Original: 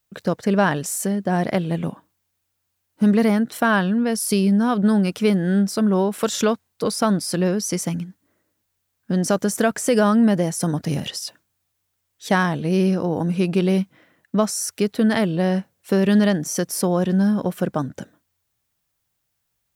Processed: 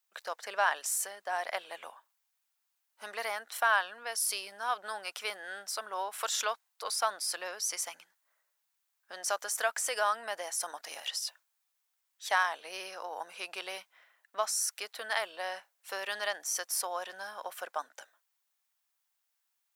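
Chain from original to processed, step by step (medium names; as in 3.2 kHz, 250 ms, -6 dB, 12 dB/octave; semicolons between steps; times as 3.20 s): high-pass 750 Hz 24 dB/octave; trim -5.5 dB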